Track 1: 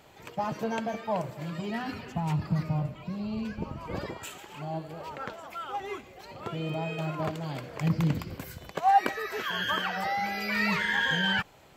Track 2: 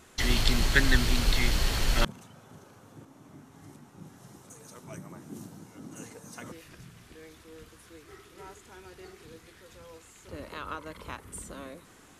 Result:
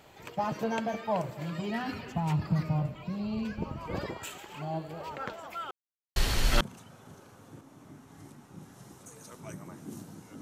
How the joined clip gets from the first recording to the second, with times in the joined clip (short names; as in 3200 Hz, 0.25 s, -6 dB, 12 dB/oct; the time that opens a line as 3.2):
track 1
5.71–6.16 mute
6.16 switch to track 2 from 1.6 s